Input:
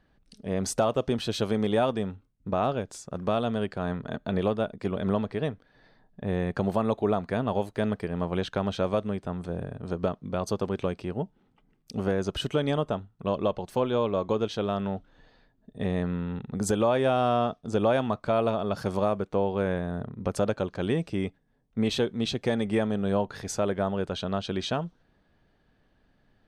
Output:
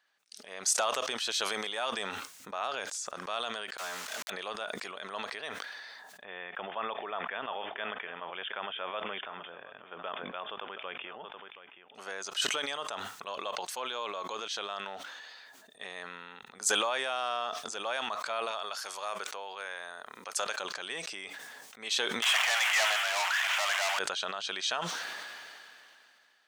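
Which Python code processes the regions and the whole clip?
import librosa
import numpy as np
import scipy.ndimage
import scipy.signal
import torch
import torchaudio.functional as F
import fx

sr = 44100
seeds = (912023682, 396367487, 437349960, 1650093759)

y = fx.chain(x, sr, fx.leveller(passes=1),
    fx.dispersion(late='lows', ms=55.0, hz=470.0),
    fx.sample_gate(floor_db=-35.5), at=(3.77, 4.3))
y = fx.chain(y, sr, fx.brickwall_lowpass(high_hz=3600.0),
    fx.echo_single(ms=725, db=-17.5), at=(6.24, 11.95))
y = fx.chain(y, sr, fx.highpass(hz=530.0, slope=6),
    fx.high_shelf(hz=5100.0, db=4.5), at=(18.51, 20.6))
y = fx.chain(y, sr, fx.delta_mod(bps=32000, step_db=-36.5),
    fx.cheby1_bandpass(low_hz=650.0, high_hz=3200.0, order=4),
    fx.leveller(passes=5), at=(22.22, 23.99))
y = scipy.signal.sosfilt(scipy.signal.butter(2, 1300.0, 'highpass', fs=sr, output='sos'), y)
y = fx.peak_eq(y, sr, hz=6700.0, db=6.5, octaves=0.89)
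y = fx.sustainer(y, sr, db_per_s=22.0)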